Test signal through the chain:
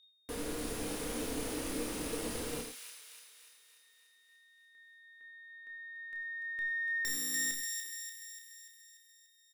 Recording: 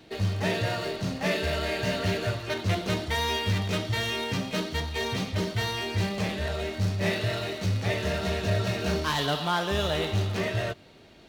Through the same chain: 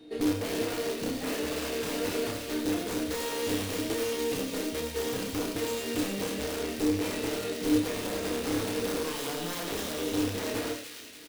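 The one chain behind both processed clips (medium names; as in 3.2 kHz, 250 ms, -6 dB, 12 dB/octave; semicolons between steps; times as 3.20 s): tracing distortion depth 0.069 ms; peaking EQ 9.9 kHz +10.5 dB 0.29 oct; peak limiter -20.5 dBFS; integer overflow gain 23.5 dB; feedback comb 240 Hz, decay 0.2 s, harmonics all, mix 50%; small resonant body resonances 300/450 Hz, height 17 dB, ringing for 75 ms; whistle 3.7 kHz -59 dBFS; doubling 30 ms -6 dB; feedback echo behind a high-pass 292 ms, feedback 56%, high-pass 2.2 kHz, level -4 dB; gated-style reverb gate 120 ms rising, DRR 6.5 dB; trim -4 dB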